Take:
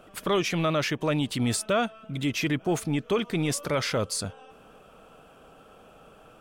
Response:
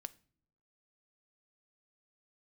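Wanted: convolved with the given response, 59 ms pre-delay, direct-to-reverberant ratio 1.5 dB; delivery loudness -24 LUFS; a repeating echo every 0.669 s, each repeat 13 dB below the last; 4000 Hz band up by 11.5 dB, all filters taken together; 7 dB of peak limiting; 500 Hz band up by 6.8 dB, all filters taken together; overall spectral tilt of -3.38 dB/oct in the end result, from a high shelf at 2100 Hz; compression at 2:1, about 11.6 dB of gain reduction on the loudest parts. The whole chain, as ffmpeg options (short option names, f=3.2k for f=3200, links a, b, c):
-filter_complex "[0:a]equalizer=f=500:t=o:g=8,highshelf=f=2.1k:g=9,equalizer=f=4k:t=o:g=6,acompressor=threshold=-37dB:ratio=2,alimiter=level_in=0.5dB:limit=-24dB:level=0:latency=1,volume=-0.5dB,aecho=1:1:669|1338|2007:0.224|0.0493|0.0108,asplit=2[a][b];[1:a]atrim=start_sample=2205,adelay=59[c];[b][c]afir=irnorm=-1:irlink=0,volume=3dB[d];[a][d]amix=inputs=2:normalize=0,volume=8dB"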